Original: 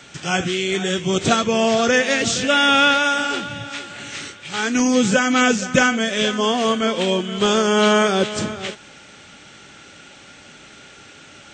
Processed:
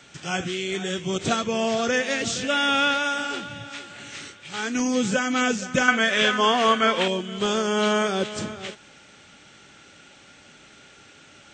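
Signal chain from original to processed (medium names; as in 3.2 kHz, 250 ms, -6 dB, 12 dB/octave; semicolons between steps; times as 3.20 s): 5.88–7.08 s: peaking EQ 1.5 kHz +11.5 dB 2.4 oct; endings held to a fixed fall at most 470 dB/s; trim -6.5 dB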